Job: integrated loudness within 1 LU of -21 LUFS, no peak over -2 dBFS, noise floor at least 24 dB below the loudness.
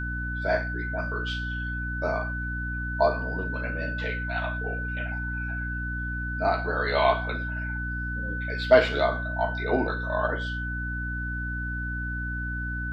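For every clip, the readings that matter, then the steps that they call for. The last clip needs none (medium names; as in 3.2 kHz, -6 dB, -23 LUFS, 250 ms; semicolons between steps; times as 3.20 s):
hum 60 Hz; highest harmonic 300 Hz; hum level -30 dBFS; steady tone 1.5 kHz; tone level -32 dBFS; loudness -28.0 LUFS; peak level -5.0 dBFS; loudness target -21.0 LUFS
-> hum notches 60/120/180/240/300 Hz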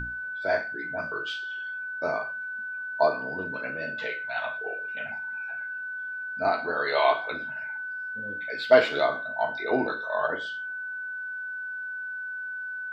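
hum not found; steady tone 1.5 kHz; tone level -32 dBFS
-> band-stop 1.5 kHz, Q 30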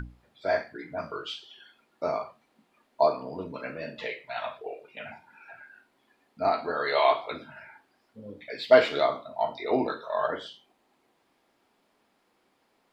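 steady tone not found; loudness -28.5 LUFS; peak level -6.0 dBFS; loudness target -21.0 LUFS
-> trim +7.5 dB; peak limiter -2 dBFS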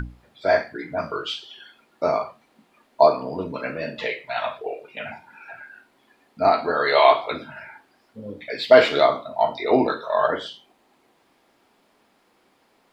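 loudness -21.5 LUFS; peak level -2.0 dBFS; noise floor -63 dBFS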